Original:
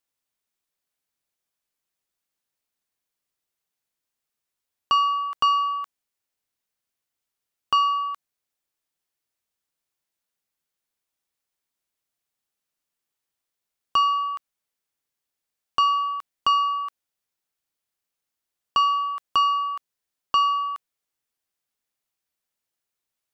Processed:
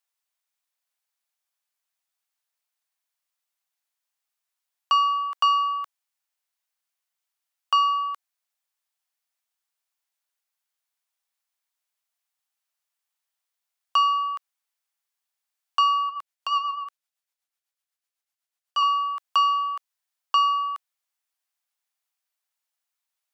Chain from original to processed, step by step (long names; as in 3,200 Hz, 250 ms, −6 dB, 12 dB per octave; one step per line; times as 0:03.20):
high-pass filter 650 Hz 24 dB per octave
0:16.09–0:18.83: rotating-speaker cabinet horn 8 Hz